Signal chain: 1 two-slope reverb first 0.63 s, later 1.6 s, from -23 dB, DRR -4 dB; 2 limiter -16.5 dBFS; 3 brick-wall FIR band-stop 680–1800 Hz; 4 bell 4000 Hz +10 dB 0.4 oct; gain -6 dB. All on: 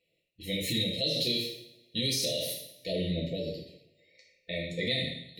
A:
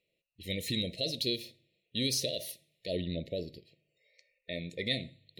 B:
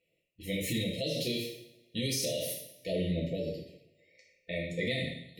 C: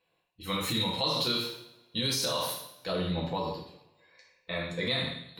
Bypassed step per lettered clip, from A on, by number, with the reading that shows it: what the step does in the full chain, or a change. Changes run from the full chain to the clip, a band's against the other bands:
1, momentary loudness spread change +3 LU; 4, 4 kHz band -7.0 dB; 3, momentary loudness spread change +3 LU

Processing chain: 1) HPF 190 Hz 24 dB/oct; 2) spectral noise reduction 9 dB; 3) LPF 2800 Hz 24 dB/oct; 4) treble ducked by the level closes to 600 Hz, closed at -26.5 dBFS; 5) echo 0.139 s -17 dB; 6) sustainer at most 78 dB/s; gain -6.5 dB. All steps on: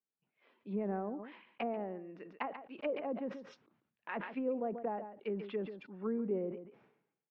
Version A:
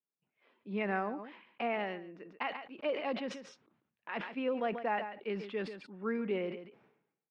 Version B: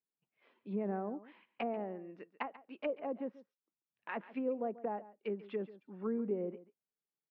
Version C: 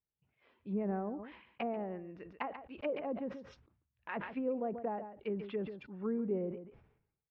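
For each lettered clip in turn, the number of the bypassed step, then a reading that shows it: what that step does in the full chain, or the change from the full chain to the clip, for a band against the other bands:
4, 4 kHz band +8.5 dB; 6, momentary loudness spread change -3 LU; 1, 125 Hz band +2.5 dB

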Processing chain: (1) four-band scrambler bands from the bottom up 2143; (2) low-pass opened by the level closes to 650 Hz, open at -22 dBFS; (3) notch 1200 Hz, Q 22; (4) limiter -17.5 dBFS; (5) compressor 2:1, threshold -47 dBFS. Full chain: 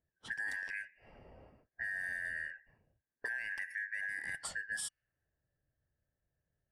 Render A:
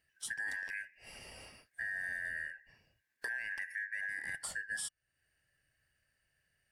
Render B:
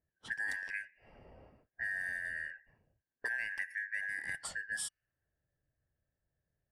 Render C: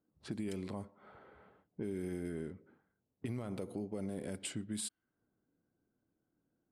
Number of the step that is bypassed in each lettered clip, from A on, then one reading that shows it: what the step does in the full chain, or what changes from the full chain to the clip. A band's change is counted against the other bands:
2, 8 kHz band +2.5 dB; 4, momentary loudness spread change -6 LU; 1, 2 kHz band -30.0 dB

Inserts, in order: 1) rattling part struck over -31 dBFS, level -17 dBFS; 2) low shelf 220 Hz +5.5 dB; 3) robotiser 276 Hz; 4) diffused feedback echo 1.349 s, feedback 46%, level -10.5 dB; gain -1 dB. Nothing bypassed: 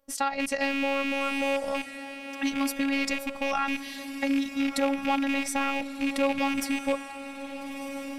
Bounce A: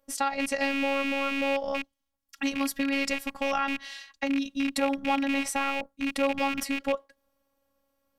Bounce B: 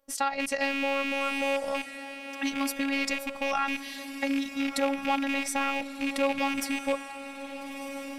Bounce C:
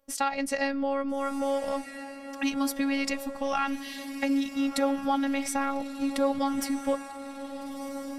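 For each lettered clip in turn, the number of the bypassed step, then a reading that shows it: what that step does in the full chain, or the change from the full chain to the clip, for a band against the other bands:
4, echo-to-direct -9.5 dB to none; 2, 250 Hz band -3.0 dB; 1, 2 kHz band -5.5 dB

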